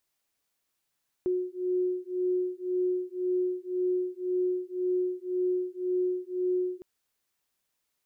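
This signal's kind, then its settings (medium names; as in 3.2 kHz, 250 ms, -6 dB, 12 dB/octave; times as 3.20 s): beating tones 363 Hz, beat 1.9 Hz, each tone -29.5 dBFS 5.56 s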